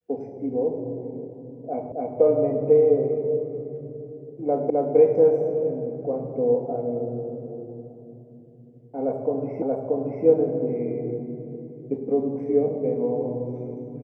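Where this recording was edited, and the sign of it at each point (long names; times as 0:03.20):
0:01.92: the same again, the last 0.27 s
0:04.70: the same again, the last 0.26 s
0:09.62: the same again, the last 0.63 s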